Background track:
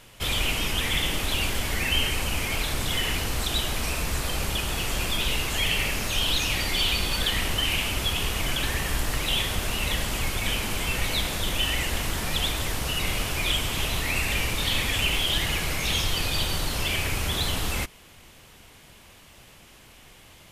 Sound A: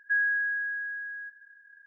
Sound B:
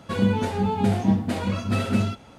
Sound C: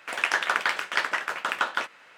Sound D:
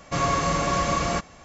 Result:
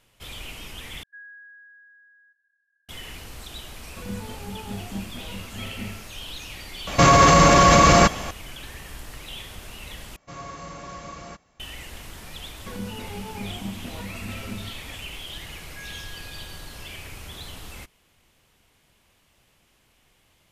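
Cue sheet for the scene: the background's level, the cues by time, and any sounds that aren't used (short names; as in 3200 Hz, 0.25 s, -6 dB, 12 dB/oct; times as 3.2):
background track -12.5 dB
1.03 replace with A -16.5 dB + HPF 1500 Hz
3.87 add B -13.5 dB
6.87 add D -4 dB + maximiser +20 dB
10.16 replace with D -15 dB
12.57 add B -14 dB + recorder AGC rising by 54 dB/s
15.66 add A -18 dB
not used: C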